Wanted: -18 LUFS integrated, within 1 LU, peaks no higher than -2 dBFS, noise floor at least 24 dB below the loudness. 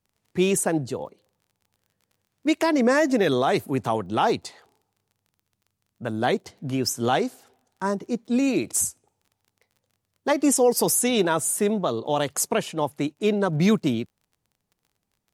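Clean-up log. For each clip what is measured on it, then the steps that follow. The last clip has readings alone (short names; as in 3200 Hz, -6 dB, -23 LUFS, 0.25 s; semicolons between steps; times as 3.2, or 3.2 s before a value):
ticks 29/s; loudness -23.5 LUFS; peak -8.5 dBFS; loudness target -18.0 LUFS
-> de-click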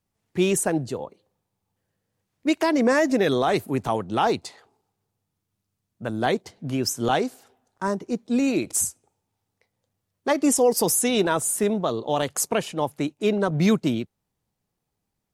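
ticks 0/s; loudness -23.5 LUFS; peak -8.5 dBFS; loudness target -18.0 LUFS
-> gain +5.5 dB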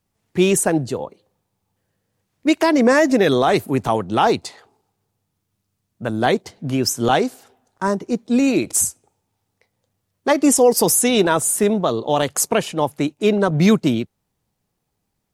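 loudness -18.0 LUFS; peak -3.0 dBFS; noise floor -75 dBFS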